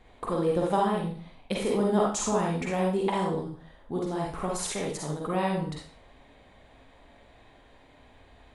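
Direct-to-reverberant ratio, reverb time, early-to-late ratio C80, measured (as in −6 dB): −2.5 dB, 0.45 s, 7.0 dB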